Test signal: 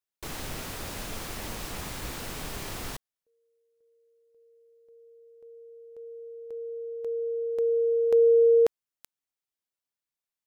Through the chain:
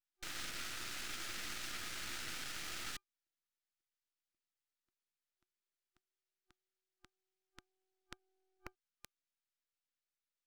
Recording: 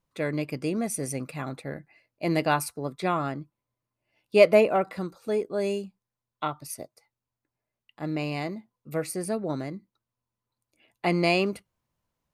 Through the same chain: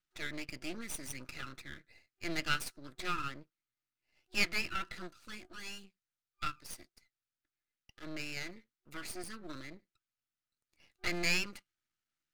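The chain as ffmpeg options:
ffmpeg -i in.wav -filter_complex "[0:a]acrossover=split=430 7400:gain=0.141 1 0.251[link_01][link_02][link_03];[link_01][link_02][link_03]amix=inputs=3:normalize=0,afftfilt=real='re*(1-between(b*sr/4096,370,1200))':imag='im*(1-between(b*sr/4096,370,1200))':win_size=4096:overlap=0.75,aeval=exprs='max(val(0),0)':channel_layout=same,volume=2dB" out.wav

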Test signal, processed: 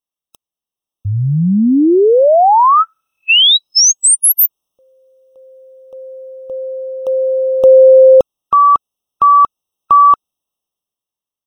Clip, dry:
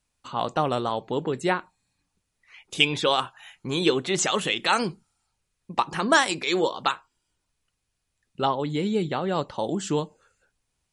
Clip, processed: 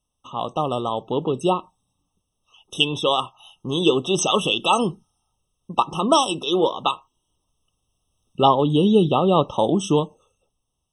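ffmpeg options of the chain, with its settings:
ffmpeg -i in.wav -af "dynaudnorm=framelen=220:gausssize=11:maxgain=14dB,afftfilt=real='re*eq(mod(floor(b*sr/1024/1300),2),0)':imag='im*eq(mod(floor(b*sr/1024/1300),2),0)':win_size=1024:overlap=0.75" out.wav

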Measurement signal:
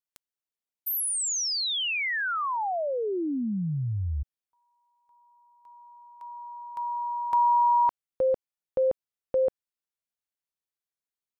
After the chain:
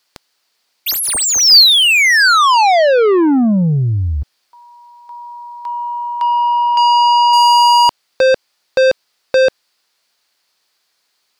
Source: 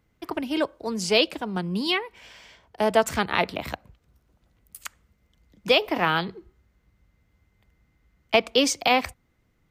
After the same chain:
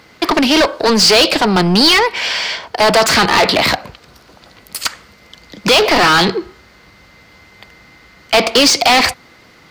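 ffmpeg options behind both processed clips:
ffmpeg -i in.wav -filter_complex "[0:a]asplit=2[link_01][link_02];[link_02]highpass=frequency=720:poles=1,volume=35dB,asoftclip=type=tanh:threshold=-6dB[link_03];[link_01][link_03]amix=inputs=2:normalize=0,lowpass=frequency=3700:poles=1,volume=-6dB,equalizer=frequency=4600:width_type=o:width=0.48:gain=9.5,volume=2.5dB" out.wav

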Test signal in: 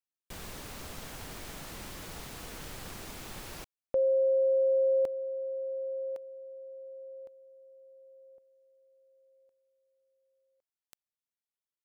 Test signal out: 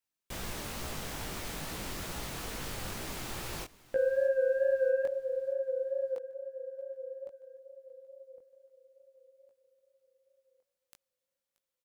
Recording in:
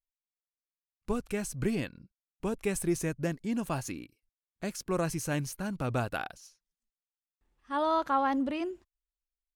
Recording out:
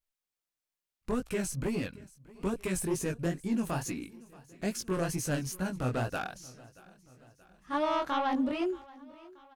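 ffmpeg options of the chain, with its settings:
ffmpeg -i in.wav -filter_complex "[0:a]asplit=2[link_01][link_02];[link_02]acompressor=threshold=-34dB:ratio=6:release=521,volume=1dB[link_03];[link_01][link_03]amix=inputs=2:normalize=0,aeval=exprs='0.178*sin(PI/2*1.58*val(0)/0.178)':channel_layout=same,flanger=delay=16:depth=7.8:speed=2.3,aecho=1:1:629|1258|1887|2516:0.0794|0.0437|0.024|0.0132,volume=-7dB" out.wav

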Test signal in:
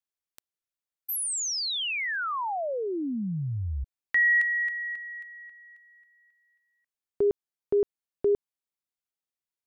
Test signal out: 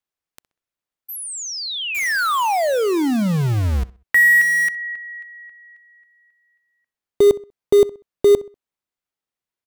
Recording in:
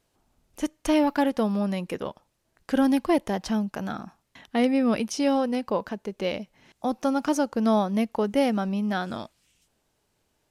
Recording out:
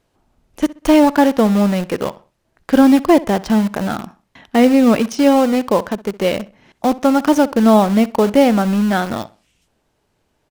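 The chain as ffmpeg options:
ffmpeg -i in.wav -filter_complex "[0:a]highshelf=frequency=3800:gain=-8.5,asplit=2[link_01][link_02];[link_02]acrusher=bits=4:mix=0:aa=0.000001,volume=-6dB[link_03];[link_01][link_03]amix=inputs=2:normalize=0,asplit=2[link_04][link_05];[link_05]adelay=64,lowpass=frequency=4100:poles=1,volume=-19dB,asplit=2[link_06][link_07];[link_07]adelay=64,lowpass=frequency=4100:poles=1,volume=0.33,asplit=2[link_08][link_09];[link_09]adelay=64,lowpass=frequency=4100:poles=1,volume=0.33[link_10];[link_04][link_06][link_08][link_10]amix=inputs=4:normalize=0,volume=7.5dB" out.wav

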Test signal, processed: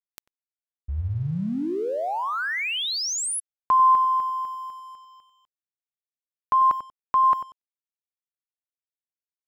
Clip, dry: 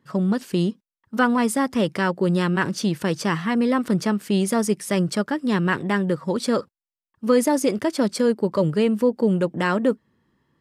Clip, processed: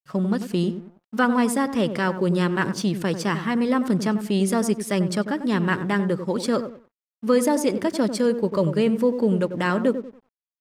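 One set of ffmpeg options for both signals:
ffmpeg -i in.wav -filter_complex "[0:a]asplit=2[link_01][link_02];[link_02]adelay=94,lowpass=frequency=800:poles=1,volume=-8dB,asplit=2[link_03][link_04];[link_04]adelay=94,lowpass=frequency=800:poles=1,volume=0.37,asplit=2[link_05][link_06];[link_06]adelay=94,lowpass=frequency=800:poles=1,volume=0.37,asplit=2[link_07][link_08];[link_08]adelay=94,lowpass=frequency=800:poles=1,volume=0.37[link_09];[link_01][link_03][link_05][link_07][link_09]amix=inputs=5:normalize=0,aeval=exprs='sgn(val(0))*max(abs(val(0))-0.00282,0)':channel_layout=same,volume=-1dB" out.wav

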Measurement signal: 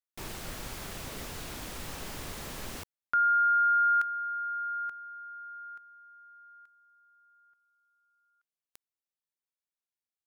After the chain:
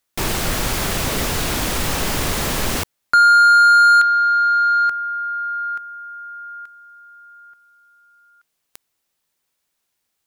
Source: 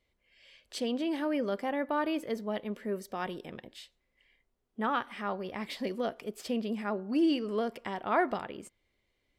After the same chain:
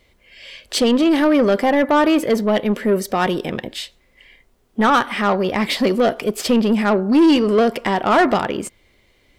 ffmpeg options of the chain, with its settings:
ffmpeg -i in.wav -af "apsyclip=22dB,acontrast=61,volume=-8.5dB" out.wav

